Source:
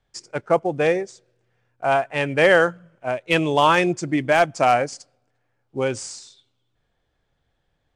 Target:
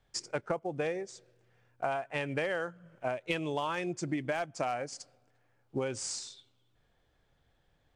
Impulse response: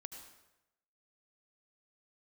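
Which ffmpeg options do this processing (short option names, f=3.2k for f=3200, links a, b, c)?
-af "acompressor=threshold=-30dB:ratio=12"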